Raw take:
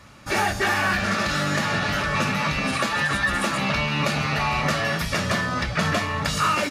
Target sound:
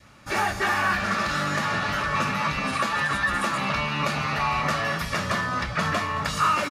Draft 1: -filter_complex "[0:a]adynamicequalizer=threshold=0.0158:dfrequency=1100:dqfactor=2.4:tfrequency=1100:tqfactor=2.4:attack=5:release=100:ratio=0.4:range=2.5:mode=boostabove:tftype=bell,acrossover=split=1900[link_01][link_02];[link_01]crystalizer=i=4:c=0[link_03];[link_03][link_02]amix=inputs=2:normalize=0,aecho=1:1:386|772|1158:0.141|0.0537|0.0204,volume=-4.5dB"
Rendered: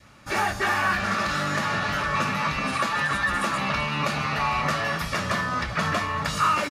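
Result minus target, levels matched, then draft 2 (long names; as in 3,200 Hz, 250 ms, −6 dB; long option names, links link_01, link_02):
echo 166 ms late
-filter_complex "[0:a]adynamicequalizer=threshold=0.0158:dfrequency=1100:dqfactor=2.4:tfrequency=1100:tqfactor=2.4:attack=5:release=100:ratio=0.4:range=2.5:mode=boostabove:tftype=bell,acrossover=split=1900[link_01][link_02];[link_01]crystalizer=i=4:c=0[link_03];[link_03][link_02]amix=inputs=2:normalize=0,aecho=1:1:220|440|660:0.141|0.0537|0.0204,volume=-4.5dB"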